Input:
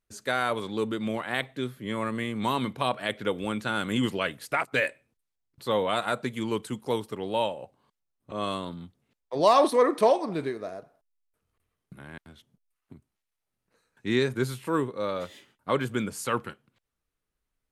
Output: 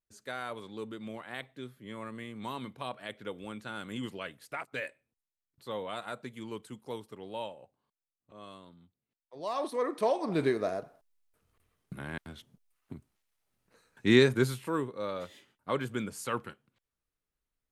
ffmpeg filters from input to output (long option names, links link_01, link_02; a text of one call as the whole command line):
ffmpeg -i in.wav -af "volume=11dB,afade=type=out:start_time=7.45:duration=0.95:silence=0.473151,afade=type=in:start_time=9.41:duration=0.74:silence=0.266073,afade=type=in:start_time=10.15:duration=0.38:silence=0.281838,afade=type=out:start_time=14.07:duration=0.68:silence=0.316228" out.wav